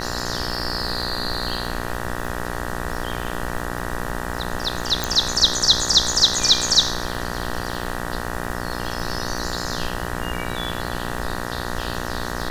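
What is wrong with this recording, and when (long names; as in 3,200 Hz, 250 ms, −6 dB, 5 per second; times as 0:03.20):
mains buzz 60 Hz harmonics 32 −29 dBFS
surface crackle 150 per second −31 dBFS
0:05.04: click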